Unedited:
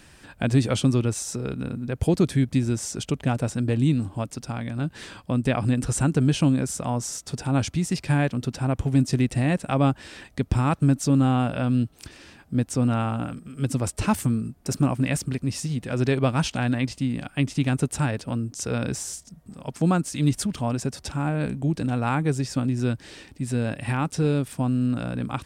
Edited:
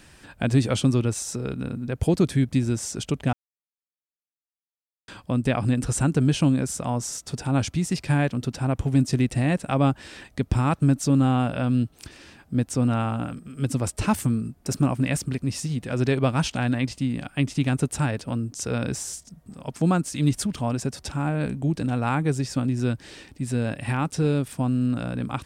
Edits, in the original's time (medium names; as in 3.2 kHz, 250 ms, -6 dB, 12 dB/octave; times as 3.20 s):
3.33–5.08 s: mute